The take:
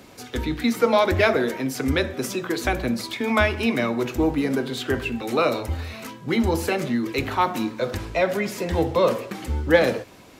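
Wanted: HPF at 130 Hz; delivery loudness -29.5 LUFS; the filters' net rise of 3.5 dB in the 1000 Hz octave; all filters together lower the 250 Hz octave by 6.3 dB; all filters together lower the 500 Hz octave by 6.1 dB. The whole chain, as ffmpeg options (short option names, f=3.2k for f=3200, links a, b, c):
-af "highpass=130,equalizer=f=250:t=o:g=-5,equalizer=f=500:t=o:g=-8.5,equalizer=f=1k:t=o:g=7,volume=-4.5dB"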